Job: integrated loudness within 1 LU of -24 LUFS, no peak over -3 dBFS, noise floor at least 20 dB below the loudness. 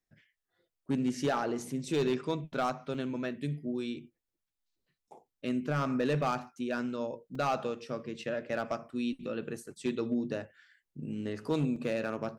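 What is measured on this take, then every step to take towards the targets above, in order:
clipped samples 0.7%; clipping level -23.0 dBFS; dropouts 3; longest dropout 3.5 ms; loudness -34.0 LUFS; peak level -23.0 dBFS; loudness target -24.0 LUFS
-> clip repair -23 dBFS; interpolate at 2.94/7.35/11.76 s, 3.5 ms; trim +10 dB

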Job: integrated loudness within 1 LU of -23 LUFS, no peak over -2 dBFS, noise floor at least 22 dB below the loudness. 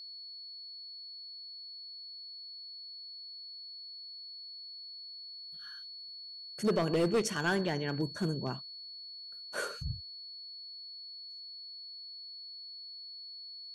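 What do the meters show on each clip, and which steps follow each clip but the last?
clipped samples 0.5%; clipping level -23.5 dBFS; steady tone 4.4 kHz; tone level -44 dBFS; loudness -38.5 LUFS; peak level -23.5 dBFS; loudness target -23.0 LUFS
-> clip repair -23.5 dBFS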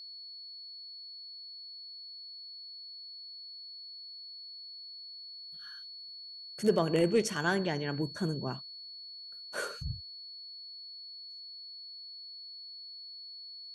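clipped samples 0.0%; steady tone 4.4 kHz; tone level -44 dBFS
-> band-stop 4.4 kHz, Q 30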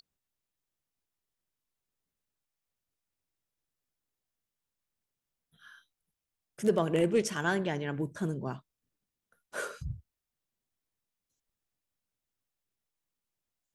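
steady tone not found; loudness -32.0 LUFS; peak level -14.5 dBFS; loudness target -23.0 LUFS
-> trim +9 dB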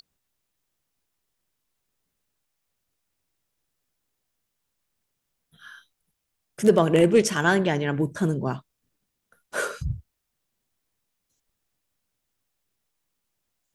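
loudness -23.0 LUFS; peak level -5.5 dBFS; noise floor -80 dBFS

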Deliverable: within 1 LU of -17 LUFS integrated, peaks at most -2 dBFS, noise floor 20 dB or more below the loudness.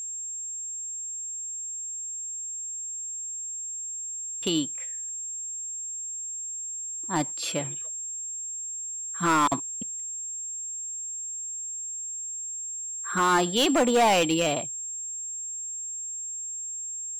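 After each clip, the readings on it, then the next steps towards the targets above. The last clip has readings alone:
clipped samples 0.6%; clipping level -17.0 dBFS; steady tone 7.5 kHz; tone level -32 dBFS; loudness -28.5 LUFS; peak level -17.0 dBFS; loudness target -17.0 LUFS
-> clip repair -17 dBFS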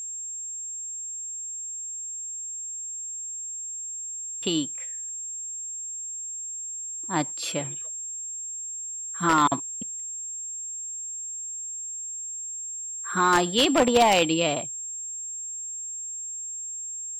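clipped samples 0.0%; steady tone 7.5 kHz; tone level -32 dBFS
-> band-stop 7.5 kHz, Q 30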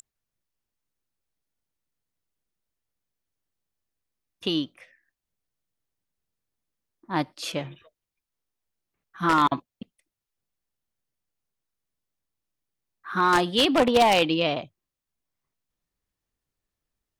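steady tone not found; loudness -23.5 LUFS; peak level -7.5 dBFS; loudness target -17.0 LUFS
-> trim +6.5 dB; peak limiter -2 dBFS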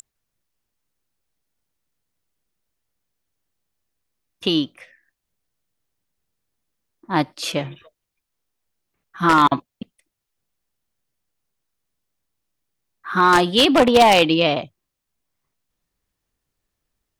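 loudness -17.5 LUFS; peak level -2.0 dBFS; noise floor -81 dBFS

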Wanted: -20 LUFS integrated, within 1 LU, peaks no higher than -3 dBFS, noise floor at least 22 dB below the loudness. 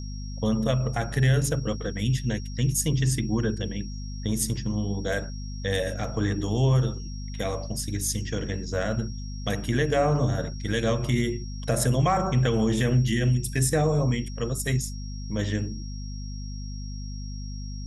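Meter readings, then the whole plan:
hum 50 Hz; highest harmonic 250 Hz; hum level -32 dBFS; steady tone 5.6 kHz; tone level -45 dBFS; loudness -26.5 LUFS; peak level -10.5 dBFS; loudness target -20.0 LUFS
-> de-hum 50 Hz, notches 5; band-stop 5.6 kHz, Q 30; trim +6.5 dB

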